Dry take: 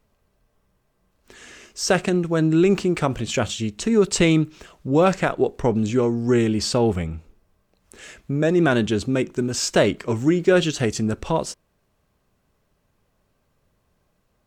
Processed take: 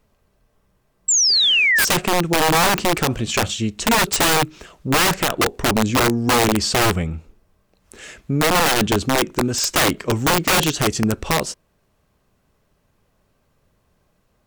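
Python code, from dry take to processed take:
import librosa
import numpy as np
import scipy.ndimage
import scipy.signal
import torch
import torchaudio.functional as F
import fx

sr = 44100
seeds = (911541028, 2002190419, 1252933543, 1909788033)

y = fx.spec_paint(x, sr, seeds[0], shape='fall', start_s=1.08, length_s=0.77, low_hz=1500.0, high_hz=7800.0, level_db=-19.0)
y = (np.mod(10.0 ** (14.5 / 20.0) * y + 1.0, 2.0) - 1.0) / 10.0 ** (14.5 / 20.0)
y = y * 10.0 ** (3.5 / 20.0)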